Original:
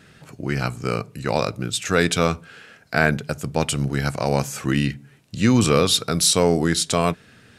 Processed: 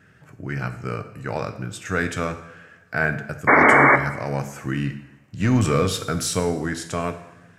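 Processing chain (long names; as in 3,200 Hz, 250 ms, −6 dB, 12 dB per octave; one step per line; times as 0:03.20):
graphic EQ with 15 bands 100 Hz +8 dB, 1,600 Hz +6 dB, 4,000 Hz −10 dB, 10,000 Hz −7 dB
0:03.47–0:03.96: sound drawn into the spectrogram noise 210–2,300 Hz −7 dBFS
0:05.40–0:06.40: leveller curve on the samples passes 1
coupled-rooms reverb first 0.79 s, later 2.6 s, from −22 dB, DRR 7.5 dB
level −7 dB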